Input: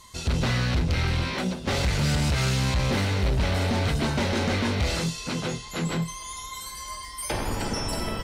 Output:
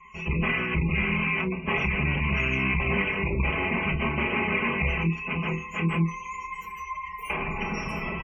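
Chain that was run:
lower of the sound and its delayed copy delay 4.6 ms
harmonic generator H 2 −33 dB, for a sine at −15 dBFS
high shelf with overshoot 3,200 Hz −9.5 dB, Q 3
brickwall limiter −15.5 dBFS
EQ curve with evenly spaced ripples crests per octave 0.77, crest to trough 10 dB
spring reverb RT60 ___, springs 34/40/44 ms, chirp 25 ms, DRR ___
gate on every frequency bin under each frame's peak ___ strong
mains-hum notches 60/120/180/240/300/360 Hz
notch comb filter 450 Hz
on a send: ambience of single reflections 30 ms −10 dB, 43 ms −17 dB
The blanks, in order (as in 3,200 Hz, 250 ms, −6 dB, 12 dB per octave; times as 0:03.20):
2.9 s, 17.5 dB, −25 dB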